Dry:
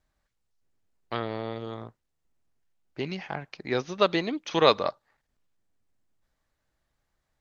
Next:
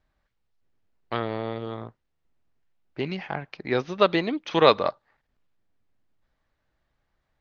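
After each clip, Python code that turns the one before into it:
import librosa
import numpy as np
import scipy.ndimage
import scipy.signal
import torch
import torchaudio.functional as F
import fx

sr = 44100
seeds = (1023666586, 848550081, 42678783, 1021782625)

y = scipy.signal.sosfilt(scipy.signal.butter(2, 3900.0, 'lowpass', fs=sr, output='sos'), x)
y = y * 10.0 ** (3.0 / 20.0)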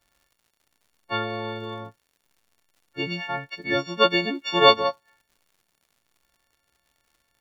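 y = fx.freq_snap(x, sr, grid_st=4)
y = fx.dmg_crackle(y, sr, seeds[0], per_s=140.0, level_db=-49.0)
y = y * 10.0 ** (-1.0 / 20.0)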